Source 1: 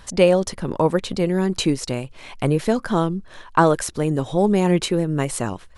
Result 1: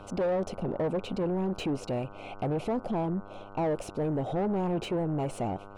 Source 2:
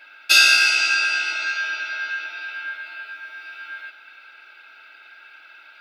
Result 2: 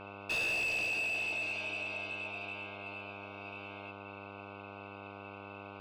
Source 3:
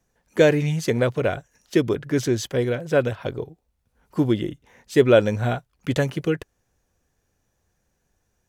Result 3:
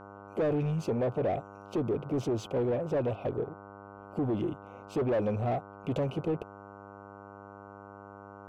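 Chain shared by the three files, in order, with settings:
elliptic band-stop 760–2600 Hz, stop band 40 dB; resonant high shelf 2.7 kHz -10 dB, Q 1.5; in parallel at -2 dB: peak limiter -16.5 dBFS; on the sum: saturation -18 dBFS; mains buzz 100 Hz, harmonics 15, -45 dBFS -4 dB/octave; overdrive pedal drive 16 dB, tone 1.3 kHz, clips at -16.5 dBFS; trim -6 dB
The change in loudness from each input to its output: -10.5 LU, -17.5 LU, -9.5 LU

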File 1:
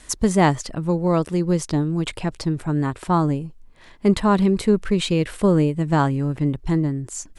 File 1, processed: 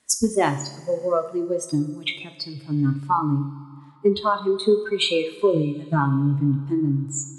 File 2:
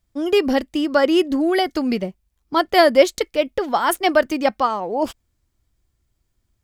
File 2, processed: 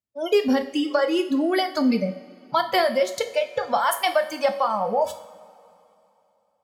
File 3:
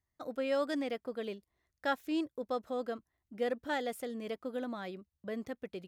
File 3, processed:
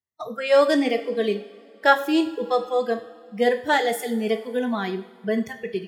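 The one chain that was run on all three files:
spectral noise reduction 24 dB; high-pass 94 Hz 24 dB/octave; compression, threshold -24 dBFS; feedback comb 140 Hz, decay 0.92 s, harmonics all, mix 50%; two-slope reverb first 0.46 s, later 3 s, from -19 dB, DRR 6.5 dB; normalise loudness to -23 LUFS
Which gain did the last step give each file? +12.5 dB, +10.5 dB, +20.5 dB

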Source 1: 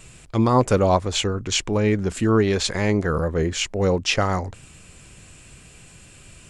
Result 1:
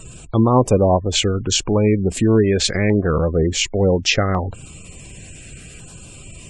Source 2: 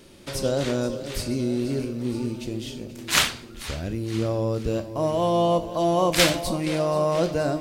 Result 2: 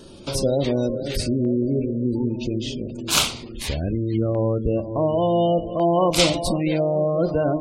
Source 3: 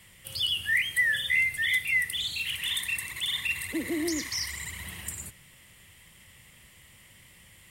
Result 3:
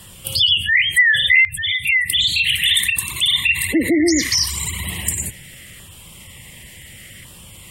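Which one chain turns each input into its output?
spectral gate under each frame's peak -25 dB strong; in parallel at +1.5 dB: compression, threshold -28 dBFS; on the sum: LFO notch saw down 0.69 Hz 880–2200 Hz; peak normalisation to -3 dBFS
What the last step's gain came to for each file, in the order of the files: +2.0 dB, 0.0 dB, +9.0 dB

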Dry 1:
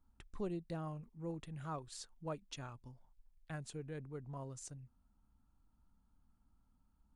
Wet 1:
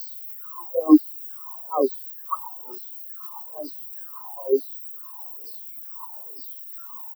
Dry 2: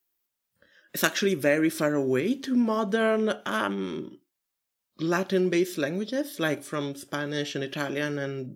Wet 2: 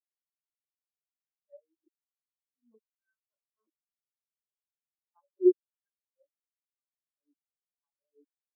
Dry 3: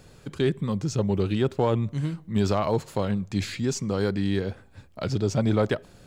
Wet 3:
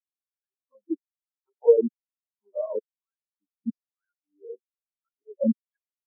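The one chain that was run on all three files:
tremolo 3.3 Hz, depth 54%; added noise white -42 dBFS; graphic EQ 125/250/500/1000/8000 Hz -6/+8/+5/+9/-12 dB; LFO high-pass saw down 1.1 Hz 320–4900 Hz; tone controls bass +9 dB, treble +14 dB; three bands offset in time highs, mids, lows 30/60 ms, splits 540/2500 Hz; spectral contrast expander 4:1; normalise loudness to -27 LUFS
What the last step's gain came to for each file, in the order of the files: +15.0 dB, -10.0 dB, -0.5 dB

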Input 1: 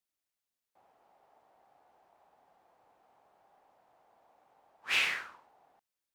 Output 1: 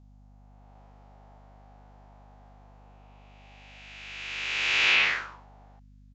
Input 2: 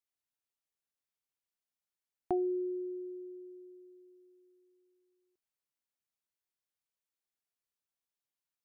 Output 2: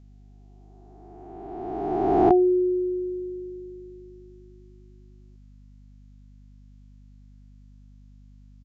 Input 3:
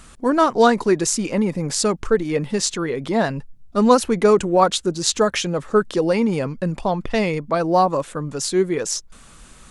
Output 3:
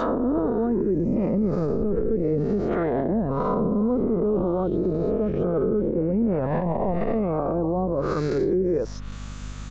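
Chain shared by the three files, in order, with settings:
reverse spectral sustain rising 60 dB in 2.20 s; hum 50 Hz, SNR 21 dB; low-pass that closes with the level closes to 320 Hz, closed at -11.5 dBFS; resampled via 16 kHz; loudness maximiser +15.5 dB; normalise loudness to -24 LUFS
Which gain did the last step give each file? -11.0 dB, -2.5 dB, -15.0 dB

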